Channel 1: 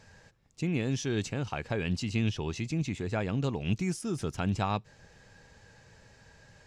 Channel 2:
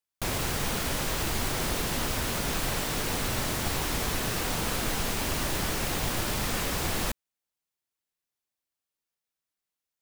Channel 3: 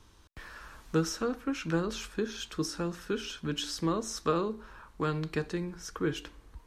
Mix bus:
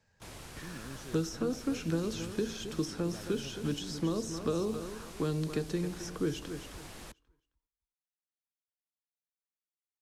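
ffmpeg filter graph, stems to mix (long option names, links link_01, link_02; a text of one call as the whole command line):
ffmpeg -i stem1.wav -i stem2.wav -i stem3.wav -filter_complex "[0:a]acrusher=bits=7:mode=log:mix=0:aa=0.000001,volume=-15.5dB[link_01];[1:a]lowpass=frequency=12000:width=0.5412,lowpass=frequency=12000:width=1.3066,volume=-17.5dB[link_02];[2:a]adelay=200,volume=2.5dB,asplit=2[link_03][link_04];[link_04]volume=-13dB,aecho=0:1:266|532|798|1064:1|0.24|0.0576|0.0138[link_05];[link_01][link_02][link_03][link_05]amix=inputs=4:normalize=0,acrossover=split=100|650|3300[link_06][link_07][link_08][link_09];[link_06]acompressor=threshold=-49dB:ratio=4[link_10];[link_07]acompressor=threshold=-28dB:ratio=4[link_11];[link_08]acompressor=threshold=-50dB:ratio=4[link_12];[link_09]acompressor=threshold=-44dB:ratio=4[link_13];[link_10][link_11][link_12][link_13]amix=inputs=4:normalize=0" out.wav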